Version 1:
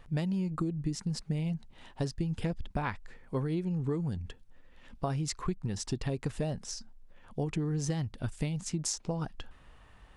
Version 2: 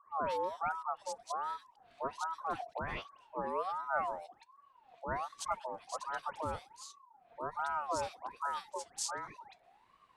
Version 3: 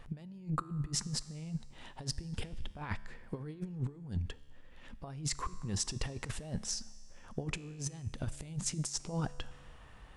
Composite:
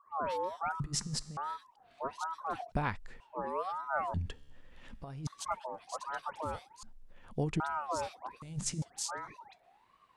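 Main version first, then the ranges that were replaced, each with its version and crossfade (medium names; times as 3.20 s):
2
0.80–1.37 s: from 3
2.72–3.20 s: from 1
4.14–5.27 s: from 3
6.83–7.60 s: from 1
8.42–8.82 s: from 3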